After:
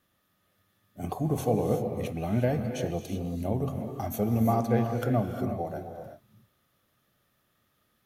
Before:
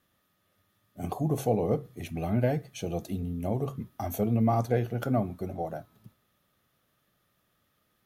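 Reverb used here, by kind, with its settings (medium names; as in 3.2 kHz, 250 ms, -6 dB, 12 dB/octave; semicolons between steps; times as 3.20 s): gated-style reverb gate 390 ms rising, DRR 5.5 dB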